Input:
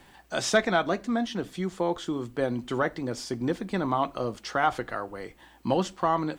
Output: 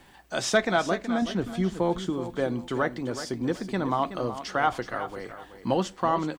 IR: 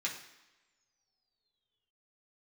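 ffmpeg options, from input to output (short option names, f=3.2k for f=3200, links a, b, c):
-filter_complex "[0:a]asettb=1/sr,asplit=3[a][b][c];[a]atrim=end=1.224[d];[b]atrim=start=1.22:end=2.1,asetpts=PTS-STARTPTS,afade=t=in:d=0.004:c=qsin,afade=t=out:st=0.876:d=0.004:c=qsin,lowshelf=f=170:g=11[e];[c]atrim=start=2.096[f];[d][e]acrossfade=d=0.004:c1=hsin:c2=qsin[g];[g][f]acrossfade=d=0.004:c1=qsin:c2=hsin,asplit=2[h][i];[i]aecho=0:1:374|748|1122:0.266|0.0718|0.0194[j];[h][j]amix=inputs=2:normalize=0"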